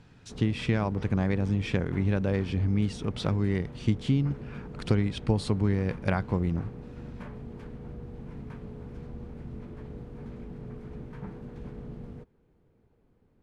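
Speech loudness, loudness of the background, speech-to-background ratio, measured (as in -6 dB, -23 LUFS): -28.5 LUFS, -42.5 LUFS, 14.0 dB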